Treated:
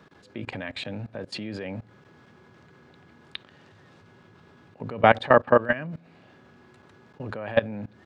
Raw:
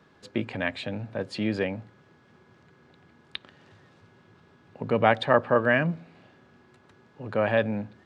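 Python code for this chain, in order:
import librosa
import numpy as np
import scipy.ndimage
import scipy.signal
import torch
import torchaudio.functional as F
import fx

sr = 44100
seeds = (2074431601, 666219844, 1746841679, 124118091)

y = fx.level_steps(x, sr, step_db=20)
y = y * 10.0 ** (6.0 / 20.0)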